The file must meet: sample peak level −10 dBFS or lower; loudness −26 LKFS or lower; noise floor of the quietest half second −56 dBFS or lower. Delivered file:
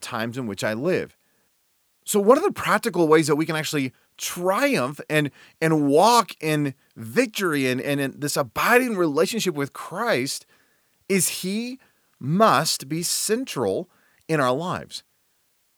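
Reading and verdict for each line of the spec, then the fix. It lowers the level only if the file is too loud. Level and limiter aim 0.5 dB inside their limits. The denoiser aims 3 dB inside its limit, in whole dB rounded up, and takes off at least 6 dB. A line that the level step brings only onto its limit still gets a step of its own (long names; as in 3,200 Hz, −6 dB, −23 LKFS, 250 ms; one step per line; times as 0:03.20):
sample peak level −2.5 dBFS: out of spec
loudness −22.5 LKFS: out of spec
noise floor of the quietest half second −67 dBFS: in spec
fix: level −4 dB
brickwall limiter −10.5 dBFS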